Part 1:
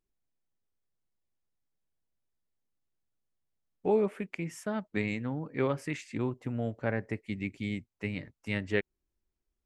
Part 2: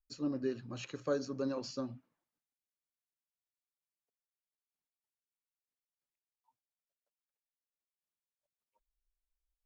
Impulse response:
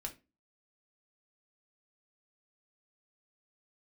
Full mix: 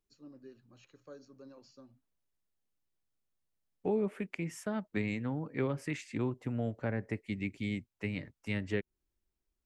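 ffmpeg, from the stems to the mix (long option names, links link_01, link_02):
-filter_complex "[0:a]volume=-1dB[link_01];[1:a]volume=-17dB[link_02];[link_01][link_02]amix=inputs=2:normalize=0,acrossover=split=340[link_03][link_04];[link_04]acompressor=threshold=-35dB:ratio=6[link_05];[link_03][link_05]amix=inputs=2:normalize=0"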